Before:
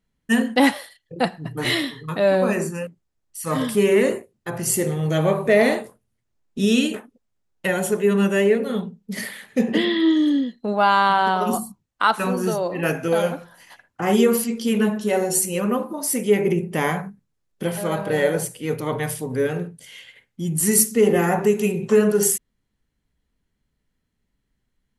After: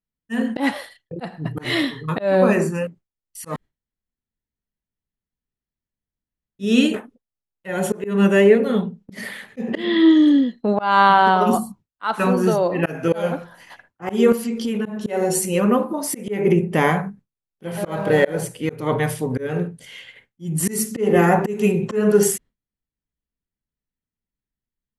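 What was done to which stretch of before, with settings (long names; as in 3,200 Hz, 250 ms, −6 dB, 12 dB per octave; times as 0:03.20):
0:03.56–0:06.59: fill with room tone
0:14.32–0:14.86: downward compressor, threshold −25 dBFS
0:17.83–0:18.41: mu-law and A-law mismatch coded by mu
whole clip: noise gate with hold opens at −40 dBFS; high-shelf EQ 4,700 Hz −9.5 dB; volume swells 221 ms; level +5 dB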